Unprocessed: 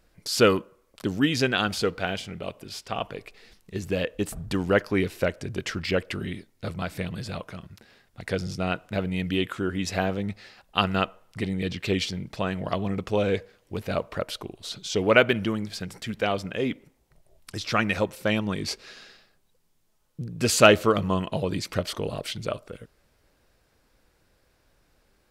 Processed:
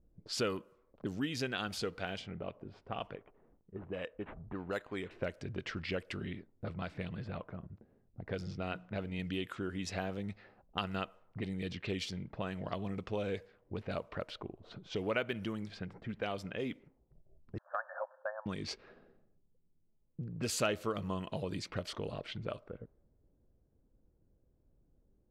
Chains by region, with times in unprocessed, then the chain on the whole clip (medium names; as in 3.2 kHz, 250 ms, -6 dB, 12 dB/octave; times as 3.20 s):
3.15–5.11 s: bass shelf 450 Hz -10.5 dB + decimation joined by straight lines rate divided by 8×
8.33–9.19 s: peaking EQ 10 kHz -5 dB 1.2 oct + hum notches 60/120/180/240/300 Hz
17.58–18.46 s: brick-wall FIR band-pass 520–1800 Hz + tape noise reduction on one side only decoder only
whole clip: level-controlled noise filter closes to 320 Hz, open at -23.5 dBFS; compression 2:1, threshold -38 dBFS; trim -3 dB